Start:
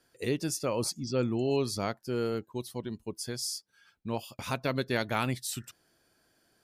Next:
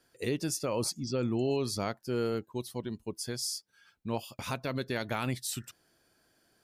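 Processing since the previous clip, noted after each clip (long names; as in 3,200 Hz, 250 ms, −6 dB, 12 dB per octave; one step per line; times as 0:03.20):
brickwall limiter −21 dBFS, peak gain reduction 5.5 dB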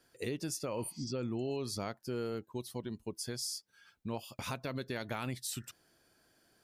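healed spectral selection 0:00.79–0:01.02, 700–8,500 Hz both
downward compressor 2 to 1, threshold −38 dBFS, peak gain reduction 7 dB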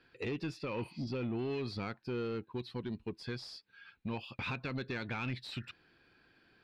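thirty-one-band graphic EQ 630 Hz −10 dB, 1,600 Hz +4 dB, 2,500 Hz +10 dB, 4,000 Hz +7 dB, 6,300 Hz −11 dB
soft clipping −34 dBFS, distortion −13 dB
high-frequency loss of the air 210 metres
level +4 dB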